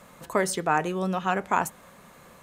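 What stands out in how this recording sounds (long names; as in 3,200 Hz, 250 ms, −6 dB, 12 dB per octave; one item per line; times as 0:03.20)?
background noise floor −53 dBFS
spectral slope −4.5 dB per octave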